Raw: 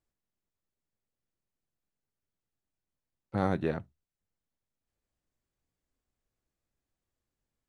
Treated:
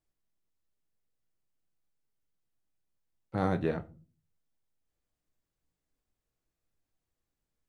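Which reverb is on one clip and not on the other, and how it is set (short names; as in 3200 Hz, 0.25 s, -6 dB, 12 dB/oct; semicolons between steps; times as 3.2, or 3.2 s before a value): shoebox room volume 180 m³, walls furnished, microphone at 0.54 m; gain -1 dB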